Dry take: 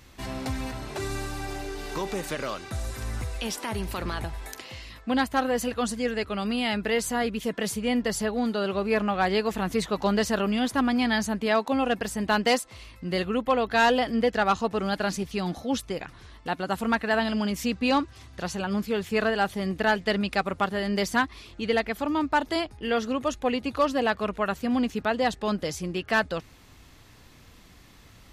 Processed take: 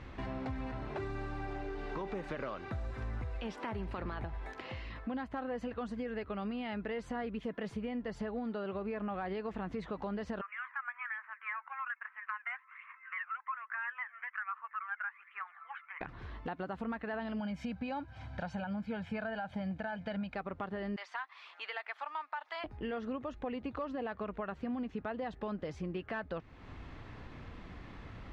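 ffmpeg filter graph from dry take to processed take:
-filter_complex "[0:a]asettb=1/sr,asplit=3[s0][s1][s2];[s0]atrim=end=10.414[s3];[s1]atrim=start=10.41:end=16.01,asetpts=PTS-STARTPTS,afade=t=in:d=0.004:c=qsin,afade=t=out:st=5.596:d=0.004:c=qsin,aphaser=in_gain=1:out_gain=1:delay=1.5:decay=0.58:speed=1.2:type=triangular,asuperpass=centerf=1600:order=8:qfactor=1.3[s4];[s2]atrim=start=16.006[s5];[s3][s4]acrossfade=d=0.004:c1=hsin:c2=qsin[s6];[s6][s5]acrossfade=d=0.004:c1=qsin:c2=hsin,asettb=1/sr,asplit=3[s7][s8][s9];[s7]atrim=end=17.394[s10];[s8]atrim=start=17.39:end=20.35,asetpts=PTS-STARTPTS,afade=t=in:d=0.004:c=qsin,afade=t=out:st=2.956:d=0.004:c=qsin,highpass=86,aecho=1:1:1.3:0.81,atrim=end_sample=130536[s11];[s9]atrim=start=20.346[s12];[s10][s11]acrossfade=d=0.004:c1=hsin:c2=qsin[s13];[s13][s12]acrossfade=d=0.004:c1=qsin:c2=hsin,asettb=1/sr,asplit=3[s14][s15][s16];[s14]atrim=end=20.964[s17];[s15]atrim=start=20.96:end=22.64,asetpts=PTS-STARTPTS,afade=t=in:d=0.004:c=qsin,afade=t=out:st=1.676:d=0.004:c=qsin,highpass=f=870:w=0.5412,highpass=f=870:w=1.3066,acrossover=split=6800[s18][s19];[s19]acompressor=threshold=0.00316:ratio=4:attack=1:release=60[s20];[s18][s20]amix=inputs=2:normalize=0[s21];[s16]atrim=start=22.636[s22];[s17][s21]acrossfade=d=0.004:c1=hsin:c2=qsin[s23];[s23][s22]acrossfade=d=0.004:c1=qsin:c2=hsin,alimiter=limit=0.0841:level=0:latency=1:release=95,lowpass=2000,acompressor=threshold=0.00398:ratio=2.5,volume=1.88"

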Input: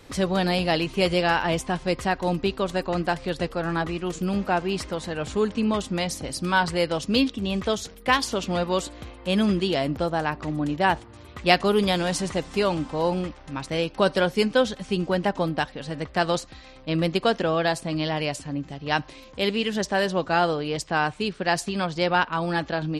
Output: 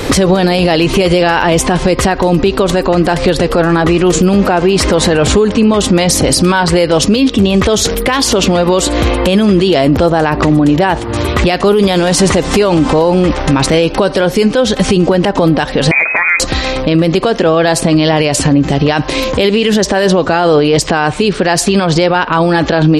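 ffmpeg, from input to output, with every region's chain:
-filter_complex "[0:a]asettb=1/sr,asplit=3[s0][s1][s2];[s0]atrim=end=15.914[s3];[s1]atrim=start=15.91:end=16.4,asetpts=PTS-STARTPTS,afade=t=in:d=0.004:c=qsin,afade=t=out:st=0.486:d=0.004:c=qsin,lowpass=f=2200:t=q:w=0.5098,lowpass=f=2200:t=q:w=0.6013,lowpass=f=2200:t=q:w=0.9,lowpass=f=2200:t=q:w=2.563,afreqshift=-2600,acompressor=threshold=0.02:ratio=2.5:attack=3.2:release=140:knee=1:detection=peak[s4];[s2]atrim=start=16.396[s5];[s3][s4]acrossfade=d=0.004:c1=hsin:c2=qsin[s6];[s6][s5]acrossfade=d=0.004:c1=qsin:c2=hsin,equalizer=f=420:w=1.4:g=4.5,acompressor=threshold=0.0398:ratio=12,alimiter=level_in=35.5:limit=0.891:release=50:level=0:latency=1,volume=0.891"

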